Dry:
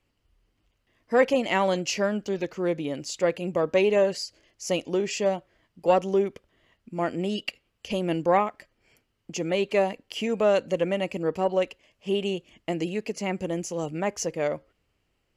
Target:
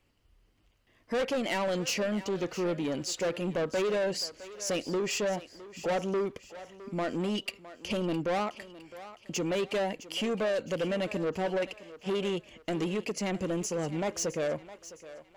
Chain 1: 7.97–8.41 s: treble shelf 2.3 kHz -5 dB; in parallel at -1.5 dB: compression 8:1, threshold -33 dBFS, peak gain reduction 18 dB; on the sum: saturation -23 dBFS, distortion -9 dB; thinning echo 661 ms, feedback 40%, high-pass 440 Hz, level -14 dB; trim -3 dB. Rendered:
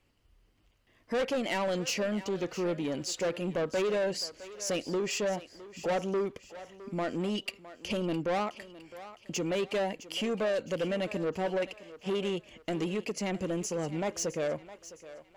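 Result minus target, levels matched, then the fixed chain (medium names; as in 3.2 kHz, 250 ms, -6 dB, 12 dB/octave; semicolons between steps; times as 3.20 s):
compression: peak gain reduction +6.5 dB
7.97–8.41 s: treble shelf 2.3 kHz -5 dB; in parallel at -1.5 dB: compression 8:1, threshold -25.5 dBFS, peak gain reduction 11.5 dB; on the sum: saturation -23 dBFS, distortion -8 dB; thinning echo 661 ms, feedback 40%, high-pass 440 Hz, level -14 dB; trim -3 dB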